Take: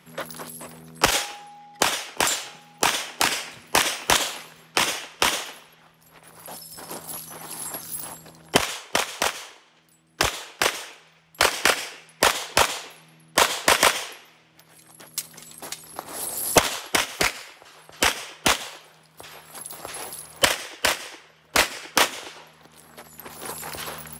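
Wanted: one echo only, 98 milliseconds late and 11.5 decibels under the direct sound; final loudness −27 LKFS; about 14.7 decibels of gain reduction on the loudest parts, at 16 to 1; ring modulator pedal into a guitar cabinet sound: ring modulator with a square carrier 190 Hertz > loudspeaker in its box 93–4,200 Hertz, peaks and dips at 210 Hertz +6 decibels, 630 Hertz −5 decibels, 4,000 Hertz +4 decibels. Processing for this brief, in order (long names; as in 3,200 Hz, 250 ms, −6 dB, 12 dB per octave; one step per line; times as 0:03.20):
downward compressor 16 to 1, threshold −29 dBFS
single-tap delay 98 ms −11.5 dB
ring modulator with a square carrier 190 Hz
loudspeaker in its box 93–4,200 Hz, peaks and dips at 210 Hz +6 dB, 630 Hz −5 dB, 4,000 Hz +4 dB
level +11 dB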